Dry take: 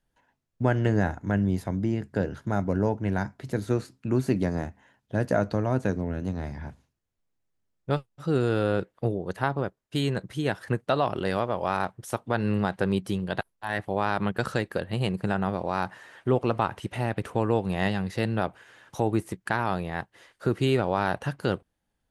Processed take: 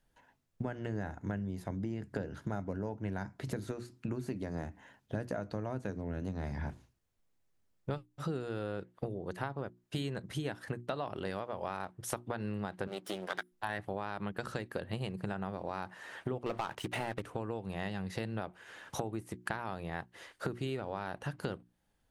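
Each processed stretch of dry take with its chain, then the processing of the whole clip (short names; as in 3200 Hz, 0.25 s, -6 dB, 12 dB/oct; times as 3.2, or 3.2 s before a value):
12.87–13.52 minimum comb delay 0.57 ms + HPF 390 Hz
16.46–17.22 low shelf 220 Hz -9 dB + sample leveller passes 3 + Doppler distortion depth 0.16 ms
whole clip: compressor 16:1, threshold -35 dBFS; notches 60/120/180/240/300/360 Hz; gain +2.5 dB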